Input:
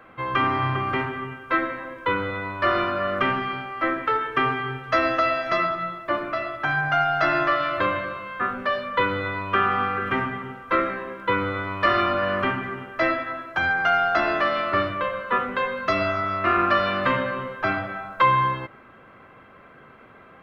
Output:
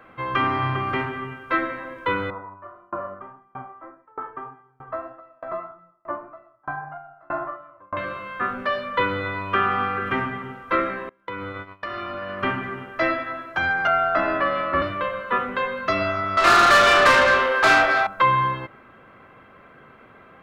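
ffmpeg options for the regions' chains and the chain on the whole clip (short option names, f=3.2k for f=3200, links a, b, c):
-filter_complex "[0:a]asettb=1/sr,asplit=3[a][b][c];[a]atrim=end=2.304[d];[b]atrim=start=2.3:end=7.97,asetpts=PTS-STARTPTS,afade=t=in:d=0.004:c=qsin,afade=t=out:st=5.666:d=0.004:c=qsin,flanger=delay=5.4:depth=5.5:regen=52:speed=1.7:shape=sinusoidal,lowpass=f=990:t=q:w=2.8,aeval=exprs='val(0)*pow(10,-33*if(lt(mod(1.6*n/s,1),2*abs(1.6)/1000),1-mod(1.6*n/s,1)/(2*abs(1.6)/1000),(mod(1.6*n/s,1)-2*abs(1.6)/1000)/(1-2*abs(1.6)/1000))/20)':c=same[e];[c]atrim=start=7.966[f];[d][e]acrossfade=d=0.004:c1=hsin:c2=qsin[g];[g][f]acrossfade=d=0.004:c1=qsin:c2=hsin,asettb=1/sr,asplit=3[h][i][j];[h]atrim=end=11.094[k];[i]atrim=start=11.09:end=12.43,asetpts=PTS-STARTPTS,afade=t=in:d=0.004:c=qsin,afade=t=out:st=1.336:d=0.004:c=qsin,agate=range=-26dB:threshold=-28dB:ratio=16:release=100:detection=peak,acompressor=threshold=-28dB:ratio=6:attack=3.2:release=140:knee=1:detection=peak[l];[j]atrim=start=12.426[m];[k][l]acrossfade=d=0.004:c1=hsin:c2=qsin[n];[n][m]acrossfade=d=0.004:c1=qsin:c2=hsin,asettb=1/sr,asplit=3[o][p][q];[o]atrim=end=13.874[r];[p]atrim=start=13.87:end=14.82,asetpts=PTS-STARTPTS,afade=t=in:d=0.004:c=qsin,afade=t=out:st=0.946:d=0.004:c=qsin,lowpass=1.8k,aemphasis=mode=production:type=75kf,afreqshift=-25[s];[q]atrim=start=14.816[t];[r][s]acrossfade=d=0.004:c1=hsin:c2=qsin[u];[u][t]acrossfade=d=0.004:c1=qsin:c2=hsin,asettb=1/sr,asplit=3[v][w][x];[v]atrim=end=16.374[y];[w]atrim=start=16.37:end=18.07,asetpts=PTS-STARTPTS,afade=t=in:d=0.004:c=qsin,afade=t=out:st=1.696:d=0.004:c=qsin,highpass=f=280:w=0.5412,highpass=f=280:w=1.3066,asplit=2[z][aa];[aa]highpass=f=720:p=1,volume=23dB,asoftclip=type=tanh:threshold=-8dB[ab];[z][ab]amix=inputs=2:normalize=0,lowpass=f=5.4k:p=1,volume=-6dB,asplit=2[ac][ad];[ad]adelay=33,volume=-7dB[ae];[ac][ae]amix=inputs=2:normalize=0,atrim=end_sample=74970[af];[x]atrim=start=18.066[ag];[y][af]acrossfade=d=0.004:c1=hsin:c2=qsin[ah];[ah][ag]acrossfade=d=0.004:c1=qsin:c2=hsin"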